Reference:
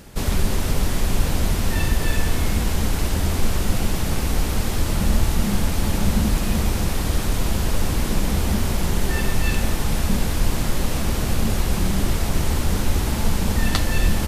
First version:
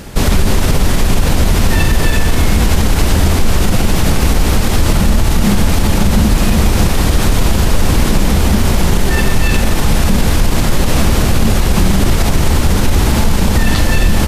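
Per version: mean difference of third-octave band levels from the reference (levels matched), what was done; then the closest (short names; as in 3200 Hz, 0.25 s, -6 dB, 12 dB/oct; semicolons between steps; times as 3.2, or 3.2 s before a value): 1.0 dB: high shelf 8400 Hz -4 dB; maximiser +14 dB; gain -1 dB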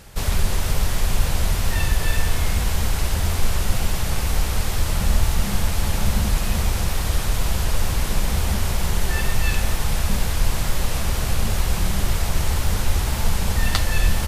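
2.5 dB: bell 270 Hz -10 dB 1.3 oct; wow and flutter 22 cents; gain +1 dB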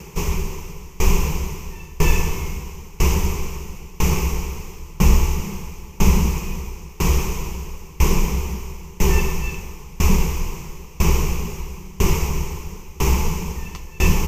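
9.0 dB: ripple EQ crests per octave 0.76, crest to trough 15 dB; dB-ramp tremolo decaying 1 Hz, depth 27 dB; gain +4.5 dB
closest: first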